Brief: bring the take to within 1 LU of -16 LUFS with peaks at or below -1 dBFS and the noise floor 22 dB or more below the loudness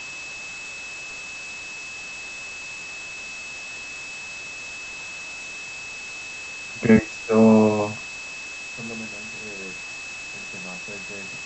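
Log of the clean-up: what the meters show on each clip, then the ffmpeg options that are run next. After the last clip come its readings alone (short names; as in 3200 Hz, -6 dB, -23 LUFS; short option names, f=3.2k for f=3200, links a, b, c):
steady tone 2600 Hz; tone level -34 dBFS; noise floor -36 dBFS; noise floor target -49 dBFS; loudness -26.5 LUFS; peak -4.0 dBFS; loudness target -16.0 LUFS
-> -af "bandreject=f=2.6k:w=30"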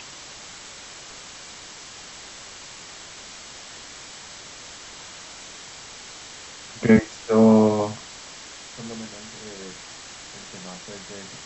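steady tone none; noise floor -42 dBFS; noise floor target -44 dBFS
-> -af "afftdn=nr=6:nf=-42"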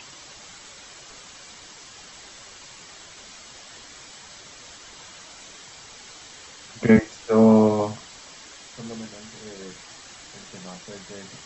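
noise floor -45 dBFS; loudness -20.0 LUFS; peak -4.0 dBFS; loudness target -16.0 LUFS
-> -af "volume=4dB,alimiter=limit=-1dB:level=0:latency=1"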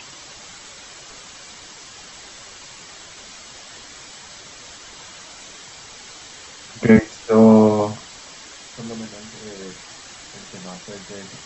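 loudness -16.0 LUFS; peak -1.0 dBFS; noise floor -41 dBFS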